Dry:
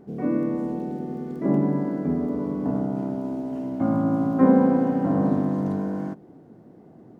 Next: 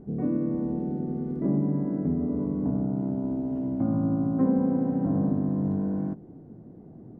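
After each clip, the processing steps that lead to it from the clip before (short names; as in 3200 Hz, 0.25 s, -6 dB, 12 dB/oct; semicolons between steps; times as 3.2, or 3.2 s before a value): tilt -4 dB/oct; compressor 2:1, threshold -20 dBFS, peak gain reduction 9 dB; gain -6 dB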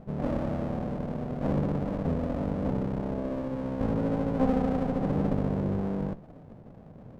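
minimum comb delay 1.2 ms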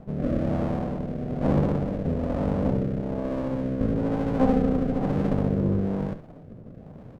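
rotary speaker horn 1.1 Hz; echo 70 ms -12.5 dB; gain +5.5 dB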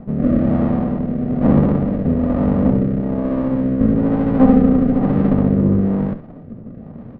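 air absorption 290 m; small resonant body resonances 230/1200/1900 Hz, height 8 dB, ringing for 45 ms; gain +6.5 dB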